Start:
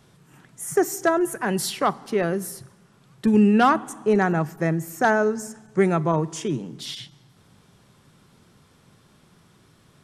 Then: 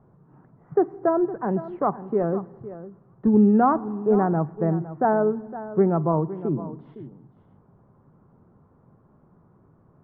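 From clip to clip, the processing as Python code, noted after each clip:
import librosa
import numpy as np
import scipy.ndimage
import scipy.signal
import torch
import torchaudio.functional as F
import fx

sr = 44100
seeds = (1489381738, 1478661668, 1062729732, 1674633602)

y = scipy.signal.sosfilt(scipy.signal.butter(4, 1100.0, 'lowpass', fs=sr, output='sos'), x)
y = y + 10.0 ** (-14.5 / 20.0) * np.pad(y, (int(511 * sr / 1000.0), 0))[:len(y)]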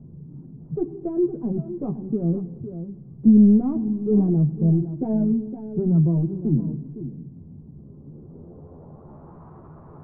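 y = fx.power_curve(x, sr, exponent=0.7)
y = fx.chorus_voices(y, sr, voices=4, hz=0.74, base_ms=13, depth_ms=1.6, mix_pct=40)
y = fx.filter_sweep_lowpass(y, sr, from_hz=240.0, to_hz=1100.0, start_s=7.72, end_s=9.42, q=1.5)
y = y * librosa.db_to_amplitude(1.0)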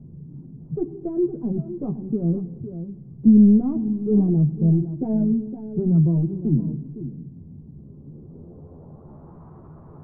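y = fx.low_shelf(x, sr, hz=480.0, db=5.5)
y = y * librosa.db_to_amplitude(-4.0)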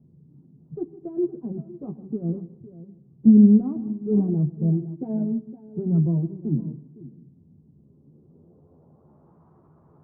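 y = fx.highpass(x, sr, hz=140.0, slope=6)
y = y + 10.0 ** (-15.0 / 20.0) * np.pad(y, (int(156 * sr / 1000.0), 0))[:len(y)]
y = fx.upward_expand(y, sr, threshold_db=-35.0, expansion=1.5)
y = y * librosa.db_to_amplitude(2.0)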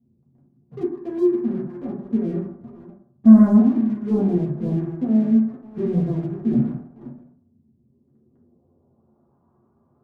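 y = fx.leveller(x, sr, passes=2)
y = fx.rev_fdn(y, sr, rt60_s=0.63, lf_ratio=0.95, hf_ratio=0.25, size_ms=25.0, drr_db=-4.0)
y = y * librosa.db_to_amplitude(-9.0)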